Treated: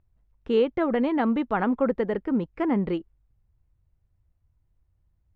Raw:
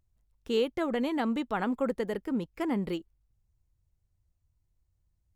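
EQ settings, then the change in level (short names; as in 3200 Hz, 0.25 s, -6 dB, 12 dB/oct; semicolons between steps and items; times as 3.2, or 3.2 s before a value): LPF 2100 Hz 12 dB/oct; +6.0 dB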